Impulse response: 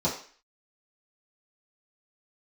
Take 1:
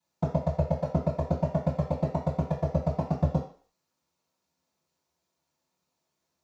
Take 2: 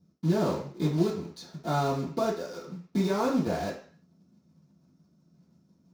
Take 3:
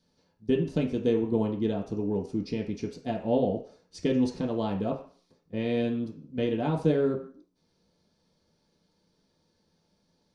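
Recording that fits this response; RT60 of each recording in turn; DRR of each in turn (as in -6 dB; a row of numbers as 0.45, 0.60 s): 2; 0.45, 0.45, 0.45 s; -19.0, -9.5, -2.5 dB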